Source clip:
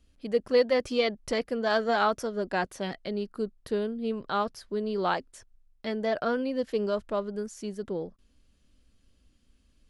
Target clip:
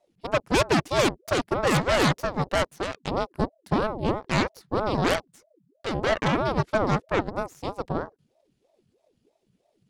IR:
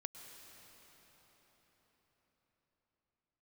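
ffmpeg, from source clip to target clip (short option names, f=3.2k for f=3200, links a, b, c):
-af "aeval=exprs='0.251*(cos(1*acos(clip(val(0)/0.251,-1,1)))-cos(1*PI/2))+0.0251*(cos(3*acos(clip(val(0)/0.251,-1,1)))-cos(3*PI/2))+0.112*(cos(8*acos(clip(val(0)/0.251,-1,1)))-cos(8*PI/2))':c=same,aeval=exprs='val(0)*sin(2*PI*400*n/s+400*0.65/3.1*sin(2*PI*3.1*n/s))':c=same"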